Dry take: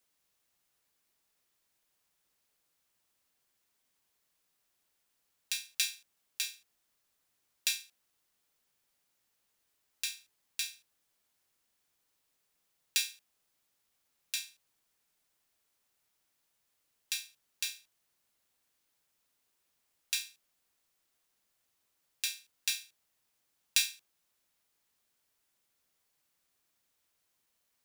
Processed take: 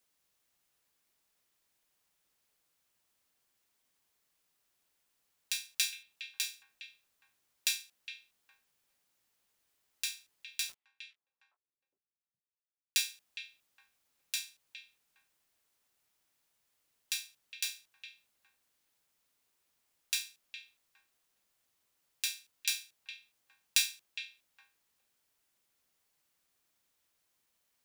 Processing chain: 10.69–12.98 sample gate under -46.5 dBFS; delay with a stepping band-pass 0.411 s, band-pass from 2500 Hz, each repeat -1.4 oct, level -8.5 dB

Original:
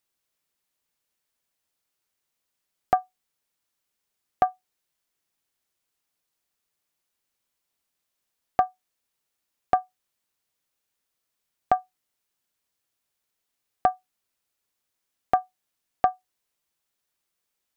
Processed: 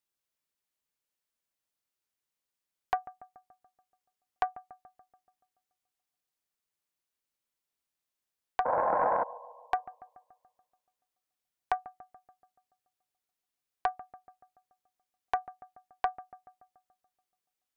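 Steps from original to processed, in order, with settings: painted sound noise, 8.65–9.24, 460–1100 Hz -19 dBFS; analogue delay 0.143 s, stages 2048, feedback 57%, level -18 dB; Doppler distortion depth 0.68 ms; gain -8 dB

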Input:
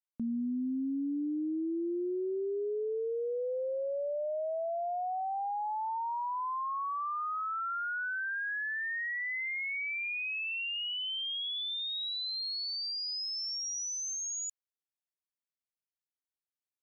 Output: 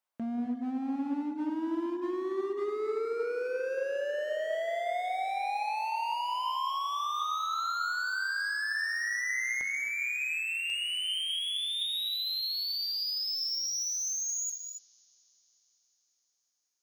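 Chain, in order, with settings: HPF 170 Hz 6 dB/oct; bell 880 Hz +11.5 dB 2.1 oct, from 9.61 s -3.5 dB, from 10.7 s +3 dB; notches 50/100/150/200/250/300/350/400 Hz; compressor 4:1, threshold -31 dBFS, peak gain reduction 7.5 dB; hard clip -36 dBFS, distortion -10 dB; dark delay 0.182 s, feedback 79%, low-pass 3200 Hz, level -18.5 dB; non-linear reverb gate 0.3 s rising, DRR 5.5 dB; Doppler distortion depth 0.12 ms; gain +3.5 dB

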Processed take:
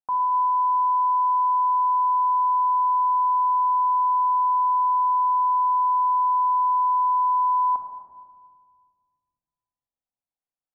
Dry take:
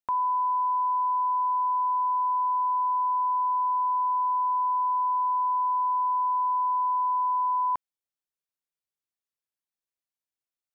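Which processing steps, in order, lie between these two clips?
LPF 1100 Hz 12 dB/oct; bell 820 Hz +8 dB; shoebox room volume 2700 m³, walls mixed, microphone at 2 m; gain -5 dB

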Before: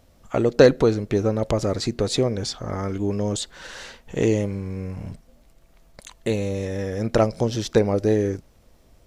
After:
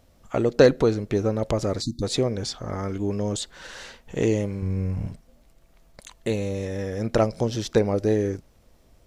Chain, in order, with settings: 1.82–2.03 spectral delete 340–3500 Hz; 4.62–5.07 low shelf 180 Hz +10.5 dB; gain -2 dB

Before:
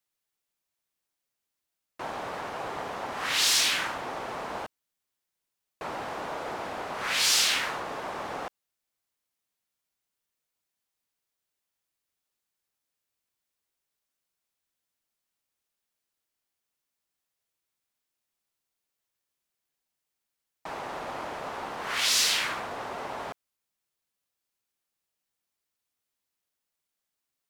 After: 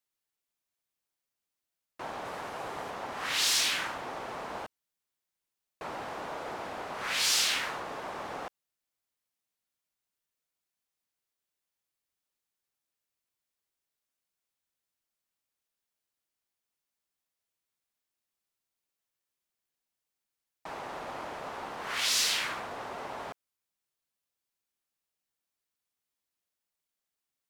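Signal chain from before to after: 2.25–2.91 bell 11000 Hz +4.5 dB 1.3 oct; gain -3.5 dB

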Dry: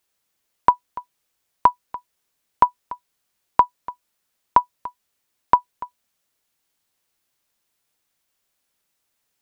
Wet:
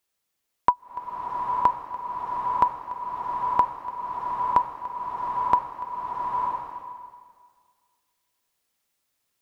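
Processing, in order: notch 1500 Hz, Q 27; bloom reverb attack 0.92 s, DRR 0 dB; gain -4.5 dB

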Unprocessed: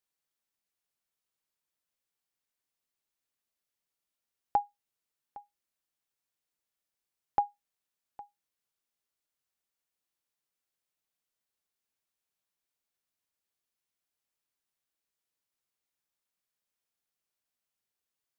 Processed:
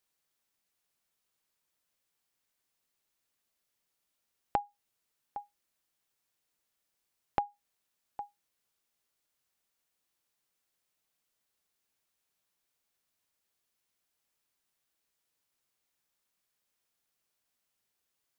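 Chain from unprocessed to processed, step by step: compressor, threshold -34 dBFS, peak gain reduction 11.5 dB; gain +6 dB

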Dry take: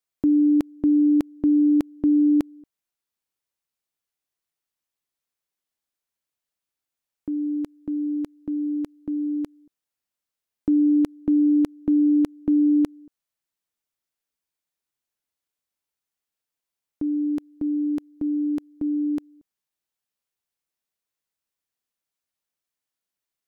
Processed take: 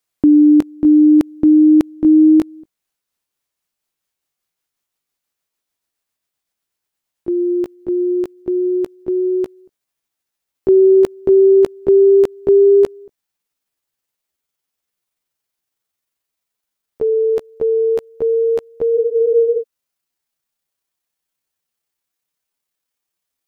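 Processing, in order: gliding pitch shift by +9.5 st starting unshifted; spectral freeze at 18.97, 0.63 s; gain +9 dB

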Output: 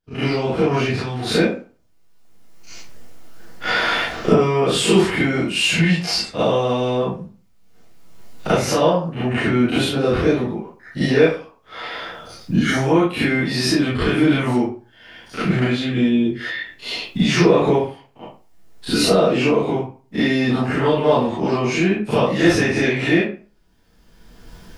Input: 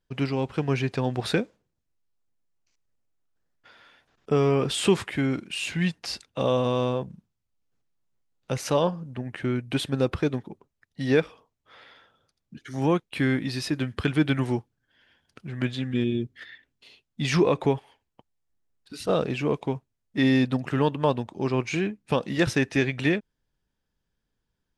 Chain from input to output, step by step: spectral dilation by 60 ms; recorder AGC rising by 22 dB/s; 0.86–1.27 bell 560 Hz -11 dB 2.1 oct; reverb RT60 0.40 s, pre-delay 33 ms, DRR -11.5 dB; in parallel at -6 dB: soft clip -0.5 dBFS, distortion -17 dB; on the sum: gain -11 dB

